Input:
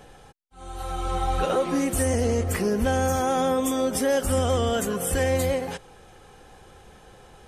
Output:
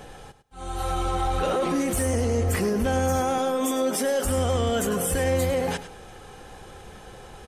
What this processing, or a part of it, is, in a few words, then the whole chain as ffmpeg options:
soft clipper into limiter: -filter_complex "[0:a]asettb=1/sr,asplit=3[link_01][link_02][link_03];[link_01]atrim=end=3.384[link_04];[link_02]atrim=start=3.38:end=4.25,asetpts=PTS-STARTPTS,afade=type=in:duration=0.004:curve=qsin,afade=type=out:start_time=0.866:duration=0.004:curve=qsin,highpass=260[link_05];[link_03]atrim=start=4.246[link_06];[link_04][link_05]acrossfade=duration=0.004:curve1=hsin:curve2=qsin[link_07];[link_07][link_06]acrossfade=duration=0.004:curve1=qsin:curve2=hsin,asoftclip=type=tanh:threshold=-15.5dB,alimiter=limit=-23.5dB:level=0:latency=1:release=27,aecho=1:1:103|206:0.224|0.0336,volume=5.5dB"

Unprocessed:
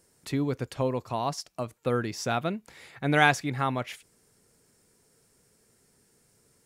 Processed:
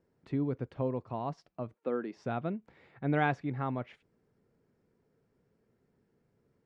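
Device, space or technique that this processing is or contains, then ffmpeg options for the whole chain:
phone in a pocket: -filter_complex "[0:a]lowpass=3300,equalizer=frequency=220:width_type=o:width=2.9:gain=5,highshelf=frequency=2300:gain=-10,asettb=1/sr,asplit=3[link_01][link_02][link_03];[link_01]atrim=end=1.754[link_04];[link_02]atrim=start=1.75:end=2.17,asetpts=PTS-STARTPTS,afade=type=in:duration=0.004:curve=qsin,afade=type=out:start_time=0.416:duration=0.004:curve=qsin,highpass=frequency=230:width=0.5412,highpass=frequency=230:width=1.3066[link_05];[link_03]atrim=start=2.166[link_06];[link_04][link_05]acrossfade=duration=0.004:curve1=hsin:curve2=qsin[link_07];[link_07][link_06]acrossfade=duration=0.004:curve1=qsin:curve2=hsin,volume=-8dB"

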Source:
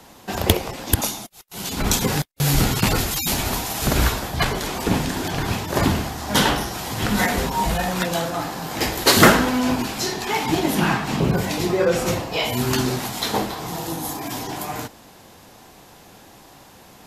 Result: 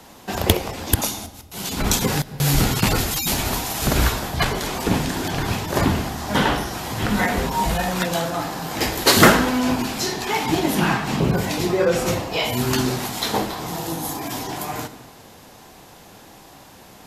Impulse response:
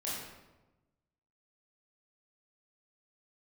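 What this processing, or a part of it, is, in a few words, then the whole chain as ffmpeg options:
ducked reverb: -filter_complex "[0:a]asplit=3[link_01][link_02][link_03];[1:a]atrim=start_sample=2205[link_04];[link_02][link_04]afir=irnorm=-1:irlink=0[link_05];[link_03]apad=whole_len=752362[link_06];[link_05][link_06]sidechaincompress=threshold=-31dB:ratio=8:attack=16:release=151,volume=-12dB[link_07];[link_01][link_07]amix=inputs=2:normalize=0,asettb=1/sr,asplit=3[link_08][link_09][link_10];[link_08]atrim=end=5.834[link_11];[link_09]atrim=start=5.83:end=7.51,asetpts=PTS-STARTPTS,afade=type=in:duration=0.004:curve=qsin,afade=type=out:start_time=1.676:duration=0.004:curve=qsin,acrossover=split=2900[link_12][link_13];[link_13]acompressor=threshold=-31dB:ratio=4:attack=1:release=60[link_14];[link_12][link_14]amix=inputs=2:normalize=0[link_15];[link_10]atrim=start=7.506[link_16];[link_11][link_15]acrossfade=duration=0.004:curve1=hsin:curve2=qsin[link_17];[link_17][link_16]acrossfade=duration=0.004:curve1=qsin:curve2=hsin"

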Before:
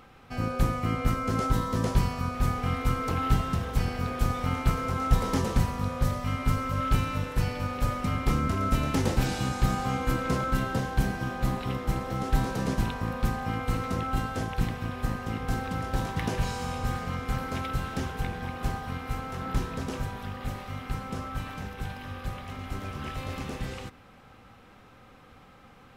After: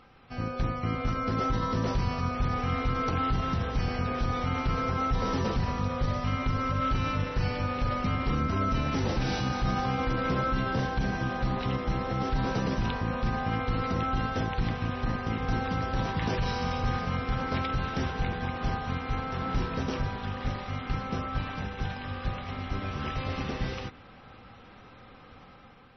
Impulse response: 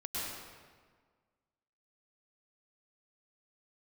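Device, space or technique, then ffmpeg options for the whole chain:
low-bitrate web radio: -af "dynaudnorm=framelen=750:gausssize=3:maxgain=6dB,alimiter=limit=-16dB:level=0:latency=1:release=28,volume=-3dB" -ar 24000 -c:a libmp3lame -b:a 24k

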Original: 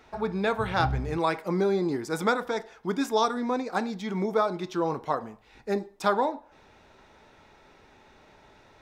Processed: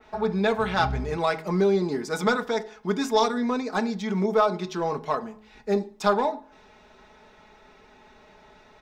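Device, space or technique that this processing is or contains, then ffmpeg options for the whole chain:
parallel distortion: -filter_complex "[0:a]asplit=2[link_01][link_02];[link_02]asoftclip=type=hard:threshold=-22dB,volume=-7dB[link_03];[link_01][link_03]amix=inputs=2:normalize=0,adynamicequalizer=threshold=0.00631:dfrequency=5900:dqfactor=0.87:tfrequency=5900:tqfactor=0.87:attack=5:release=100:ratio=0.375:range=2:mode=boostabove:tftype=bell,equalizer=frequency=11000:width=0.9:gain=-5.5,aecho=1:1:4.7:0.58,bandreject=frequency=53.58:width_type=h:width=4,bandreject=frequency=107.16:width_type=h:width=4,bandreject=frequency=160.74:width_type=h:width=4,bandreject=frequency=214.32:width_type=h:width=4,bandreject=frequency=267.9:width_type=h:width=4,bandreject=frequency=321.48:width_type=h:width=4,bandreject=frequency=375.06:width_type=h:width=4,bandreject=frequency=428.64:width_type=h:width=4,volume=-2dB"

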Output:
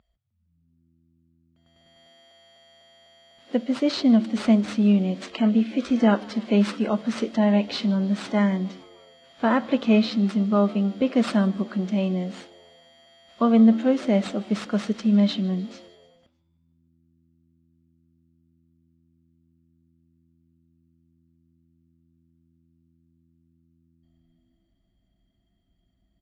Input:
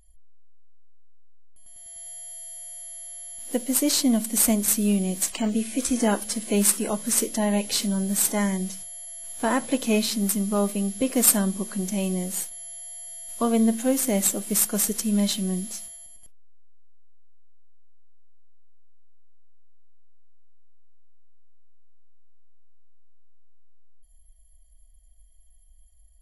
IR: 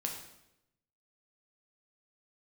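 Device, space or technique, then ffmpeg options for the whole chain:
frequency-shifting delay pedal into a guitar cabinet: -filter_complex "[0:a]asplit=5[link_01][link_02][link_03][link_04][link_05];[link_02]adelay=152,afreqshift=83,volume=-23.5dB[link_06];[link_03]adelay=304,afreqshift=166,volume=-27.7dB[link_07];[link_04]adelay=456,afreqshift=249,volume=-31.8dB[link_08];[link_05]adelay=608,afreqshift=332,volume=-36dB[link_09];[link_01][link_06][link_07][link_08][link_09]amix=inputs=5:normalize=0,highpass=98,equalizer=frequency=220:width_type=q:width=4:gain=6,equalizer=frequency=590:width_type=q:width=4:gain=4,equalizer=frequency=1300:width_type=q:width=4:gain=6,lowpass=frequency=4000:width=0.5412,lowpass=frequency=4000:width=1.3066"

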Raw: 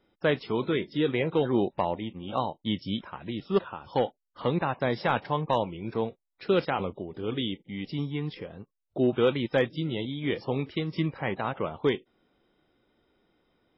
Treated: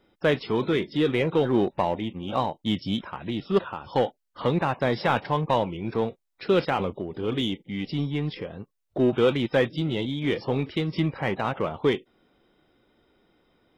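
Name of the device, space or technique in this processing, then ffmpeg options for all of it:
parallel distortion: -filter_complex "[0:a]asplit=2[link_01][link_02];[link_02]asoftclip=type=hard:threshold=-31dB,volume=-6dB[link_03];[link_01][link_03]amix=inputs=2:normalize=0,volume=1.5dB"

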